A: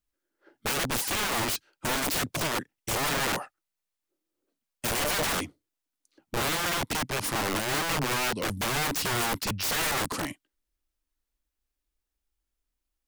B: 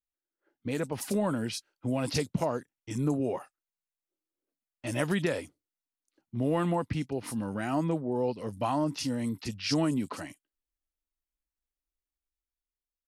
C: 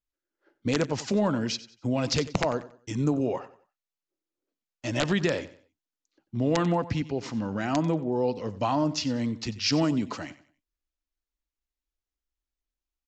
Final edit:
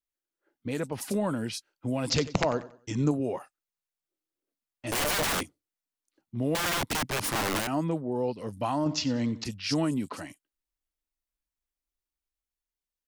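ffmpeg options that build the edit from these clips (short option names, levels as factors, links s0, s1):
-filter_complex "[2:a]asplit=2[s0][s1];[0:a]asplit=2[s2][s3];[1:a]asplit=5[s4][s5][s6][s7][s8];[s4]atrim=end=2.102[s9];[s0]atrim=start=2.098:end=3.112[s10];[s5]atrim=start=3.108:end=4.922[s11];[s2]atrim=start=4.918:end=5.432[s12];[s6]atrim=start=5.428:end=6.552[s13];[s3]atrim=start=6.548:end=7.672[s14];[s7]atrim=start=7.668:end=8.862[s15];[s1]atrim=start=8.858:end=9.442[s16];[s8]atrim=start=9.438[s17];[s9][s10]acrossfade=d=0.004:c1=hsin:c2=hsin[s18];[s18][s11]acrossfade=d=0.004:c1=hsin:c2=hsin[s19];[s19][s12]acrossfade=d=0.004:c1=hsin:c2=hsin[s20];[s20][s13]acrossfade=d=0.004:c1=hsin:c2=hsin[s21];[s21][s14]acrossfade=d=0.004:c1=hsin:c2=hsin[s22];[s22][s15]acrossfade=d=0.004:c1=hsin:c2=hsin[s23];[s23][s16]acrossfade=d=0.004:c1=hsin:c2=hsin[s24];[s24][s17]acrossfade=d=0.004:c1=hsin:c2=hsin"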